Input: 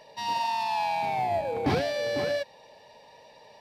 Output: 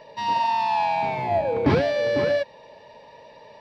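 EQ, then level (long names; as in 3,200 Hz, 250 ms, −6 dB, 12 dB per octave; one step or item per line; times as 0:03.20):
Butterworth band-reject 760 Hz, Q 6.5
high-shelf EQ 3,900 Hz −11.5 dB
parametric band 11,000 Hz −14 dB 0.54 octaves
+7.0 dB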